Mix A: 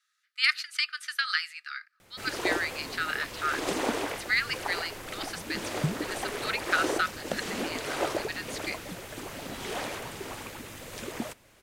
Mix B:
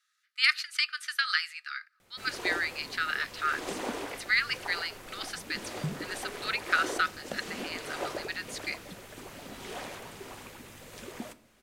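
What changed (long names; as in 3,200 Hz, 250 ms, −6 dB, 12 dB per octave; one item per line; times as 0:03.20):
background −8.0 dB
reverb: on, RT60 0.55 s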